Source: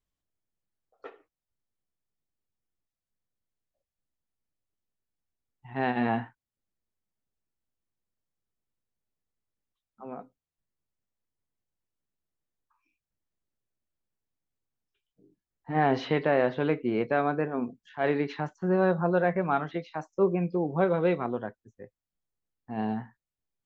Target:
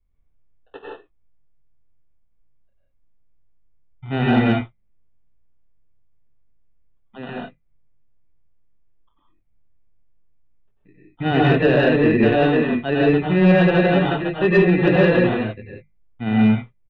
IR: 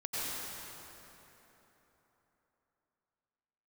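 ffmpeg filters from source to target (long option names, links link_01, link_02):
-filter_complex "[0:a]aemphasis=mode=reproduction:type=riaa,bandreject=frequency=50:width_type=h:width=6,bandreject=frequency=100:width_type=h:width=6,bandreject=frequency=150:width_type=h:width=6,bandreject=frequency=200:width_type=h:width=6,adynamicequalizer=threshold=0.0112:dfrequency=140:dqfactor=4.6:tfrequency=140:tqfactor=4.6:attack=5:release=100:ratio=0.375:range=2:mode=cutabove:tftype=bell,acrossover=split=300|760[link_01][link_02][link_03];[link_03]asoftclip=type=tanh:threshold=-33dB[link_04];[link_01][link_02][link_04]amix=inputs=3:normalize=0,atempo=1.4,acrusher=samples=20:mix=1:aa=0.000001,aresample=8000,aresample=44100[link_05];[1:a]atrim=start_sample=2205,afade=type=out:start_time=0.24:duration=0.01,atrim=end_sample=11025[link_06];[link_05][link_06]afir=irnorm=-1:irlink=0,aeval=exprs='0.473*(cos(1*acos(clip(val(0)/0.473,-1,1)))-cos(1*PI/2))+0.0335*(cos(5*acos(clip(val(0)/0.473,-1,1)))-cos(5*PI/2))':channel_layout=same,volume=4dB"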